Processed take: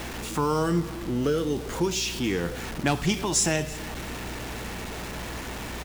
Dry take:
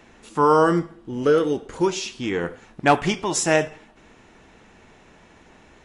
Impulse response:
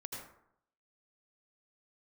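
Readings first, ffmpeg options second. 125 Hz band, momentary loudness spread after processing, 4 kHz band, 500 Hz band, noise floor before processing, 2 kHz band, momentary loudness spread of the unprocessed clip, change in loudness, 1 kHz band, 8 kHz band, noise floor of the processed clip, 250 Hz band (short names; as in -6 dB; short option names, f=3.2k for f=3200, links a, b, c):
+1.0 dB, 11 LU, +1.0 dB, -7.5 dB, -52 dBFS, -4.5 dB, 12 LU, -6.0 dB, -9.0 dB, +2.0 dB, -36 dBFS, -2.5 dB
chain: -filter_complex "[0:a]aeval=exprs='val(0)+0.5*0.0266*sgn(val(0))':c=same,acrossover=split=240|3000[a][b][c];[b]acompressor=threshold=-29dB:ratio=3[d];[a][d][c]amix=inputs=3:normalize=0,asplit=2[e][f];[f]aecho=0:1:330:0.0944[g];[e][g]amix=inputs=2:normalize=0,aeval=exprs='val(0)+0.0112*(sin(2*PI*60*n/s)+sin(2*PI*2*60*n/s)/2+sin(2*PI*3*60*n/s)/3+sin(2*PI*4*60*n/s)/4+sin(2*PI*5*60*n/s)/5)':c=same"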